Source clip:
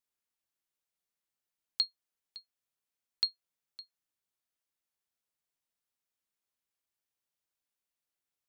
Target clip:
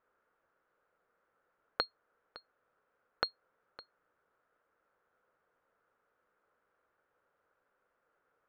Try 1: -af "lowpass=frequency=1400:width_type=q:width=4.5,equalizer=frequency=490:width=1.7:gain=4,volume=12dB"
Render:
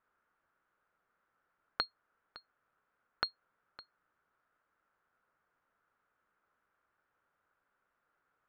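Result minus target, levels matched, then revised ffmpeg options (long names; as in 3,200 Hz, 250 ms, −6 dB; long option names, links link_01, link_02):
500 Hz band −7.0 dB
-af "lowpass=frequency=1400:width_type=q:width=4.5,equalizer=frequency=490:width=1.7:gain=14,volume=12dB"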